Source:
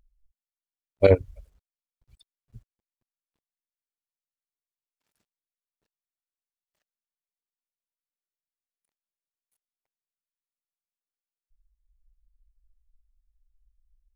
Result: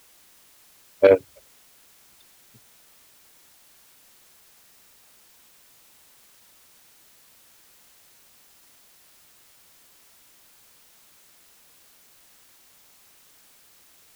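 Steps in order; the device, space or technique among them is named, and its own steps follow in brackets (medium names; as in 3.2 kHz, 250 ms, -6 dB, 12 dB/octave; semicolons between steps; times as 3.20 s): tape answering machine (band-pass 300–2900 Hz; saturation -9.5 dBFS, distortion -17 dB; wow and flutter; white noise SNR 23 dB); trim +6 dB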